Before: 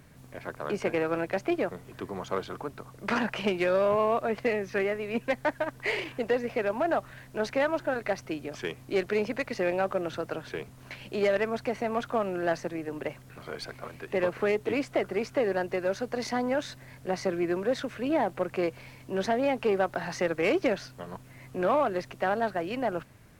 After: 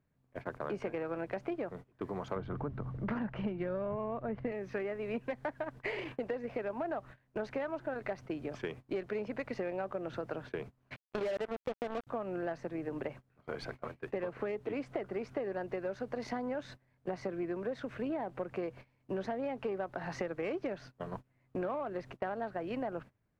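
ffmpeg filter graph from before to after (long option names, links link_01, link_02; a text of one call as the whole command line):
ffmpeg -i in.wav -filter_complex "[0:a]asettb=1/sr,asplit=3[link_01][link_02][link_03];[link_01]atrim=end=2.364[link_04];[link_02]atrim=start=2.36:end=4.52,asetpts=PTS-STARTPTS,afade=type=in:duration=0.004:curve=qsin,afade=type=out:start_time=2.156:duration=0.004:curve=qsin,bass=frequency=250:gain=12,treble=frequency=4000:gain=-13,bandreject=frequency=2500:width=20[link_05];[link_03]atrim=start=4.516[link_06];[link_04][link_05]acrossfade=duration=0.004:curve1=hsin:curve2=qsin[link_07];[link_07][link_06]acrossfade=duration=0.004:curve1=qsin:curve2=hsin,asettb=1/sr,asplit=3[link_08][link_09][link_10];[link_08]atrim=end=10.964[link_11];[link_09]atrim=start=10.96:end=12.07,asetpts=PTS-STARTPTS,afade=type=in:duration=0.004:curve=qsin,afade=type=out:start_time=1.106:duration=0.004:curve=qsin,equalizer=frequency=500:width_type=o:width=0.66:gain=7,asoftclip=type=hard:threshold=-21.5dB,acrusher=bits=3:mix=0:aa=0.5[link_12];[link_10]atrim=start=12.066[link_13];[link_11][link_12]acrossfade=duration=0.004:curve1=hsin:curve2=qsin[link_14];[link_14][link_13]acrossfade=duration=0.004:curve1=qsin:curve2=hsin,agate=range=-24dB:threshold=-41dB:ratio=16:detection=peak,lowpass=frequency=1600:poles=1,acompressor=threshold=-35dB:ratio=6,volume=1dB" out.wav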